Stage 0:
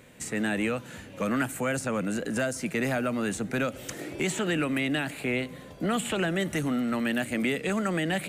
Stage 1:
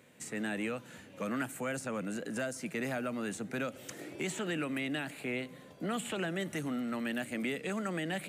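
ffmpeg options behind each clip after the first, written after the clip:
-af "highpass=120,volume=-7.5dB"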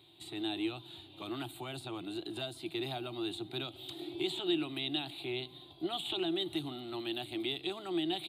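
-af "firequalizer=gain_entry='entry(120,0);entry(220,-22);entry(340,9);entry(490,-23);entry(720,1);entry(1700,-18);entry(3700,15);entry(5800,-22);entry(8800,-10);entry(13000,-6)':delay=0.05:min_phase=1,volume=1.5dB"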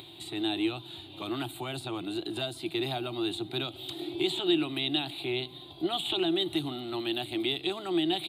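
-af "acompressor=mode=upward:threshold=-47dB:ratio=2.5,volume=6dB"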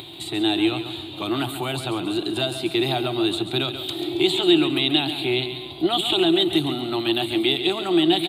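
-af "aecho=1:1:137|274|411|548|685:0.316|0.149|0.0699|0.0328|0.0154,volume=9dB"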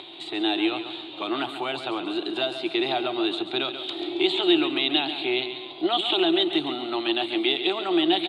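-af "highpass=360,lowpass=3.7k"

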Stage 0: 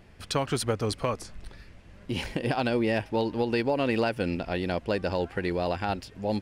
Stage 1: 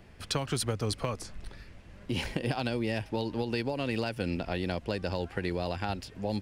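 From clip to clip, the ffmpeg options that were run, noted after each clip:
-filter_complex "[0:a]acrossover=split=170|3000[a][b][c];[b]acompressor=threshold=-30dB:ratio=6[d];[a][d][c]amix=inputs=3:normalize=0"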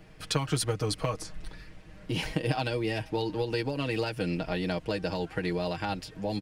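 -af "aecho=1:1:6.4:0.73"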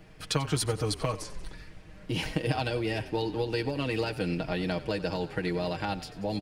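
-filter_complex "[0:a]asplit=7[a][b][c][d][e][f][g];[b]adelay=92,afreqshift=-31,volume=-16dB[h];[c]adelay=184,afreqshift=-62,volume=-20.6dB[i];[d]adelay=276,afreqshift=-93,volume=-25.2dB[j];[e]adelay=368,afreqshift=-124,volume=-29.7dB[k];[f]adelay=460,afreqshift=-155,volume=-34.3dB[l];[g]adelay=552,afreqshift=-186,volume=-38.9dB[m];[a][h][i][j][k][l][m]amix=inputs=7:normalize=0"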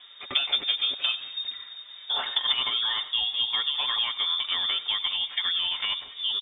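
-af "lowpass=f=3.1k:t=q:w=0.5098,lowpass=f=3.1k:t=q:w=0.6013,lowpass=f=3.1k:t=q:w=0.9,lowpass=f=3.1k:t=q:w=2.563,afreqshift=-3700,volume=3dB"

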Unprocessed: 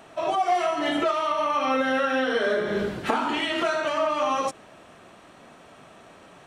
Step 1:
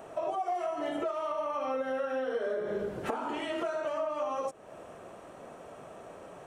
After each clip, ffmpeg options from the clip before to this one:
-af "equalizer=f=250:t=o:w=1:g=-3,equalizer=f=500:t=o:w=1:g=7,equalizer=f=2k:t=o:w=1:g=-4,equalizer=f=4k:t=o:w=1:g=-9,acompressor=threshold=-34dB:ratio=3"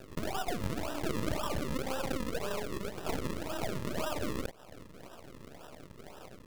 -af "equalizer=f=1.3k:t=o:w=0.45:g=9,acrusher=samples=40:mix=1:aa=0.000001:lfo=1:lforange=40:lforate=1.9,aeval=exprs='max(val(0),0)':c=same"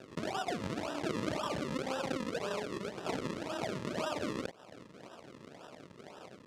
-af "highpass=140,lowpass=6.9k"

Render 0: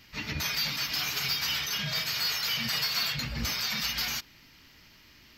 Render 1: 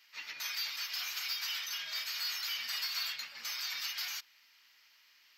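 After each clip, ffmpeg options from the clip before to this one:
-af "highpass=1.1k,volume=-7dB"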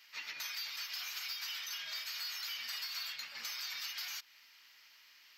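-af "acompressor=threshold=-44dB:ratio=3,volume=3dB"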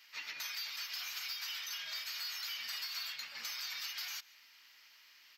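-af "aecho=1:1:146:0.0668"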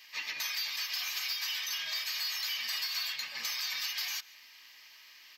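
-af "asuperstop=centerf=1400:order=20:qfactor=7.8,volume=6.5dB"

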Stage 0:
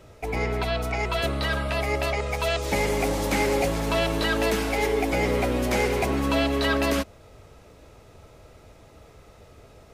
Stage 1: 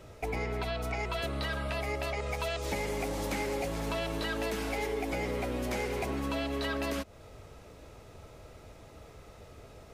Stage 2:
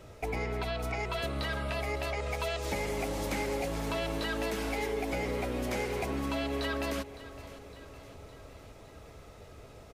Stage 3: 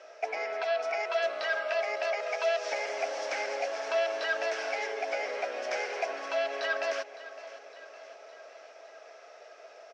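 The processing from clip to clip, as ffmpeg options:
-af "acompressor=threshold=-30dB:ratio=5,volume=-1dB"
-af "aecho=1:1:560|1120|1680|2240|2800|3360:0.158|0.0919|0.0533|0.0309|0.0179|0.0104"
-af "highpass=f=490:w=0.5412,highpass=f=490:w=1.3066,equalizer=f=660:t=q:w=4:g=10,equalizer=f=960:t=q:w=4:g=-4,equalizer=f=1.6k:t=q:w=4:g=8,equalizer=f=2.5k:t=q:w=4:g=3,equalizer=f=3.8k:t=q:w=4:g=-4,equalizer=f=5.6k:t=q:w=4:g=9,lowpass=f=5.8k:w=0.5412,lowpass=f=5.8k:w=1.3066"

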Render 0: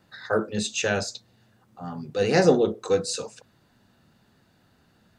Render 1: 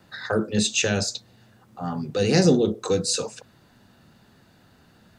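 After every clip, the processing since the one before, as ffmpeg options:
-filter_complex "[0:a]acrossover=split=340|3000[a][b][c];[b]acompressor=threshold=-32dB:ratio=6[d];[a][d][c]amix=inputs=3:normalize=0,volume=6dB"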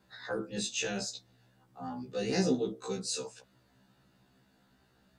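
-af "afftfilt=real='re*1.73*eq(mod(b,3),0)':imag='im*1.73*eq(mod(b,3),0)':win_size=2048:overlap=0.75,volume=-8.5dB"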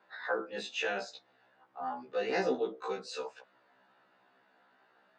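-af "highpass=620,lowpass=2k,volume=7.5dB"

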